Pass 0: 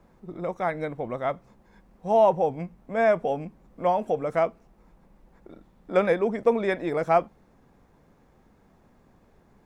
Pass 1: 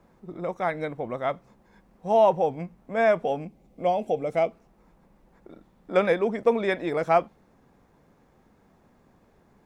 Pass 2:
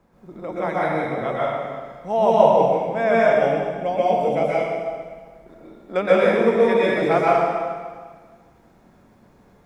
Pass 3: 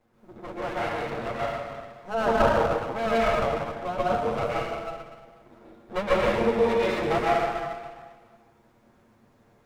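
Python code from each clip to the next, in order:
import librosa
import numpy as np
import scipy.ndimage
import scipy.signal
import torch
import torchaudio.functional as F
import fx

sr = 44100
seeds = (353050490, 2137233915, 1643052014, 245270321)

y1 = fx.low_shelf(x, sr, hz=64.0, db=-7.0)
y1 = fx.spec_box(y1, sr, start_s=3.46, length_s=1.05, low_hz=860.0, high_hz=2000.0, gain_db=-9)
y1 = fx.dynamic_eq(y1, sr, hz=3400.0, q=1.1, threshold_db=-43.0, ratio=4.0, max_db=4)
y2 = fx.rev_plate(y1, sr, seeds[0], rt60_s=1.6, hf_ratio=0.95, predelay_ms=110, drr_db=-7.5)
y2 = F.gain(torch.from_numpy(y2), -1.5).numpy()
y3 = fx.lower_of_two(y2, sr, delay_ms=8.6)
y3 = F.gain(torch.from_numpy(y3), -5.0).numpy()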